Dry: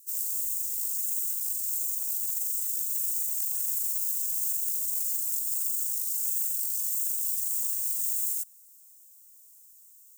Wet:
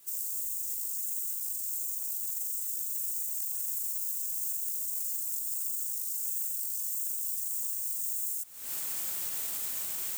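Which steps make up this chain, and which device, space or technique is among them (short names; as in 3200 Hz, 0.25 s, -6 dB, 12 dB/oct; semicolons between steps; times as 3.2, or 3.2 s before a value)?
cheap recorder with automatic gain (white noise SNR 32 dB; recorder AGC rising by 78 dB/s); gain -4.5 dB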